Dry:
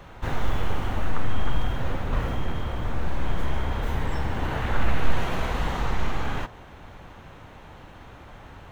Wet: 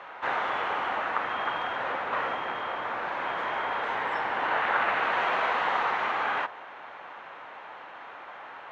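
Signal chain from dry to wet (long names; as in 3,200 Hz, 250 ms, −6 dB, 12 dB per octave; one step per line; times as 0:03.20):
band-pass filter 790–2,200 Hz
level +8.5 dB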